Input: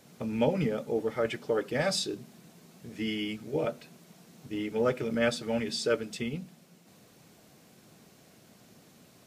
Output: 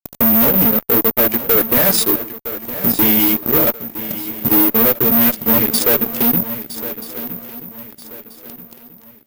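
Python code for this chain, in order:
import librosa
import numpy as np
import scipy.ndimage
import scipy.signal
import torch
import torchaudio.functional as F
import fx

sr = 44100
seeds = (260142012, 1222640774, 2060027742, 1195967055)

p1 = fx.peak_eq(x, sr, hz=250.0, db=7.5, octaves=0.89)
p2 = fx.hum_notches(p1, sr, base_hz=50, count=3)
p3 = fx.transient(p2, sr, attack_db=10, sustain_db=-12)
p4 = np.sign(p3) * np.maximum(np.abs(p3) - 10.0 ** (-43.0 / 20.0), 0.0)
p5 = p3 + F.gain(torch.from_numpy(p4), -9.0).numpy()
p6 = fx.chorus_voices(p5, sr, voices=2, hz=0.89, base_ms=15, depth_ms=2.8, mix_pct=30)
p7 = fx.fuzz(p6, sr, gain_db=36.0, gate_db=-42.0)
p8 = p7 + fx.echo_swing(p7, sr, ms=1283, ratio=3, feedback_pct=34, wet_db=-13.0, dry=0)
p9 = (np.kron(p8[::3], np.eye(3)[0]) * 3)[:len(p8)]
y = F.gain(torch.from_numpy(p9), -2.5).numpy()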